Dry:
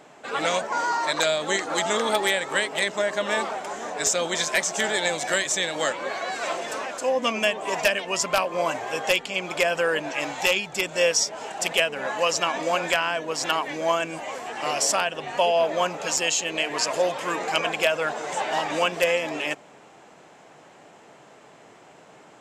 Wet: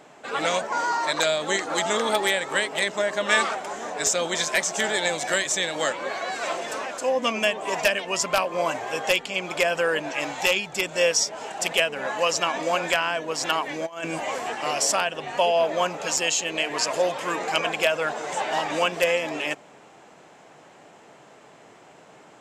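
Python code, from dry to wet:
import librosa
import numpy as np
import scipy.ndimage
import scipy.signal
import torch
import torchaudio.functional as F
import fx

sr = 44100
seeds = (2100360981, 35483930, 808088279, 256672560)

y = fx.spec_box(x, sr, start_s=3.29, length_s=0.26, low_hz=1100.0, high_hz=11000.0, gain_db=7)
y = fx.over_compress(y, sr, threshold_db=-29.0, ratio=-0.5, at=(13.85, 14.54), fade=0.02)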